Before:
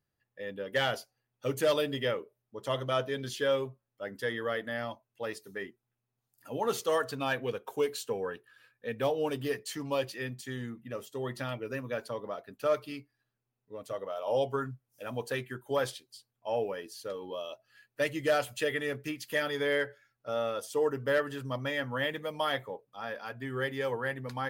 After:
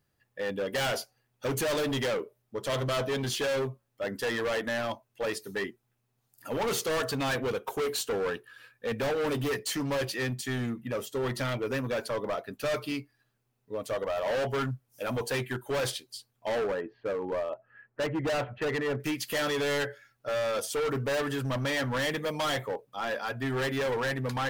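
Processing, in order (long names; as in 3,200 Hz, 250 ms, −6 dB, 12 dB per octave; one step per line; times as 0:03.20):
0:16.58–0:19.00: inverse Chebyshev low-pass filter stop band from 9,100 Hz, stop band 80 dB
hard clipping −35.5 dBFS, distortion −4 dB
level +8.5 dB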